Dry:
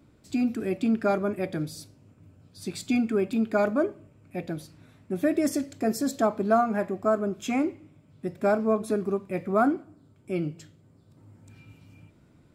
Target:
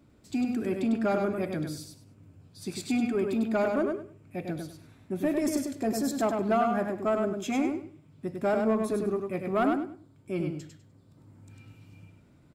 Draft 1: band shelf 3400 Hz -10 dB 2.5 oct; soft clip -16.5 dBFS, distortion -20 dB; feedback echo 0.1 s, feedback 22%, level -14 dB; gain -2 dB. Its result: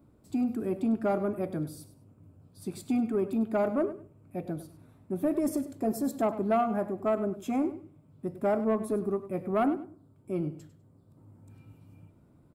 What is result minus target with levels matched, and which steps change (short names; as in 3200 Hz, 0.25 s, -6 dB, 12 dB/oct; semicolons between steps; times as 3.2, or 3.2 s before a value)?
4000 Hz band -9.0 dB; echo-to-direct -9.5 dB
change: feedback echo 0.1 s, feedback 22%, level -4.5 dB; remove: band shelf 3400 Hz -10 dB 2.5 oct